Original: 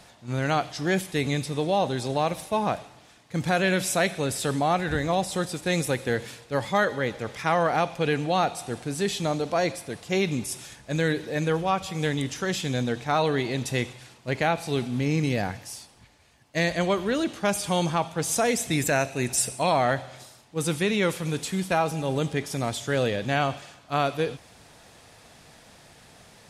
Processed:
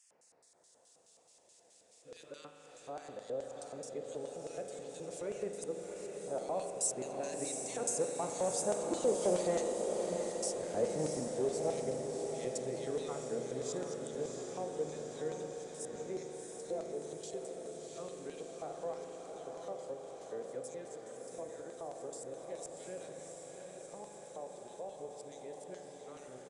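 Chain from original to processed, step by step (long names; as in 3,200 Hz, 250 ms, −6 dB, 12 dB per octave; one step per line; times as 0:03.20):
played backwards from end to start
source passing by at 0:09.87, 12 m/s, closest 11 metres
in parallel at −1 dB: downward compressor, threshold −40 dBFS, peak gain reduction 19 dB
on the sum: auto-filter notch saw down 0.38 Hz 590–4,100 Hz
hard clipping −23.5 dBFS, distortion −13 dB
auto-filter band-pass square 4.7 Hz 490–7,600 Hz
feedback delay with all-pass diffusion 693 ms, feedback 65%, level −5 dB
on a send at −5.5 dB: convolution reverb RT60 2.1 s, pre-delay 39 ms
on the sum: downsampling to 22,050 Hz
one half of a high-frequency compander encoder only
level +2 dB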